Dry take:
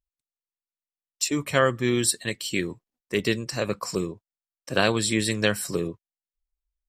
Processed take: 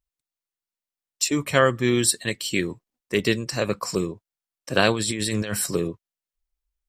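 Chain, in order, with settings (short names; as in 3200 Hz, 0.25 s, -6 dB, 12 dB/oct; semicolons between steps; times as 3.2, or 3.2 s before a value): 4.93–5.66 negative-ratio compressor -29 dBFS, ratio -1; gain +2.5 dB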